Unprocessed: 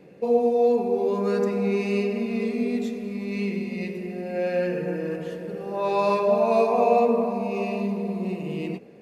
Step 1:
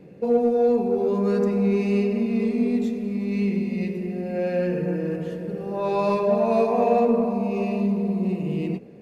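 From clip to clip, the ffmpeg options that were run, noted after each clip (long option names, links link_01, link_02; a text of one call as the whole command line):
ffmpeg -i in.wav -filter_complex "[0:a]lowshelf=frequency=310:gain=11,asplit=2[link_01][link_02];[link_02]asoftclip=type=tanh:threshold=-17dB,volume=-11dB[link_03];[link_01][link_03]amix=inputs=2:normalize=0,volume=-4.5dB" out.wav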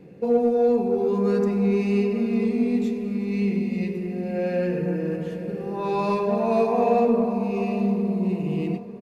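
ffmpeg -i in.wav -af "bandreject=frequency=590:width=12,aecho=1:1:900|1800|2700:0.158|0.0602|0.0229" out.wav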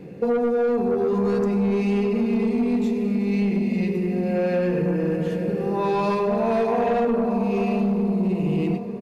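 ffmpeg -i in.wav -af "asoftclip=type=tanh:threshold=-17dB,acompressor=threshold=-26dB:ratio=6,volume=7dB" out.wav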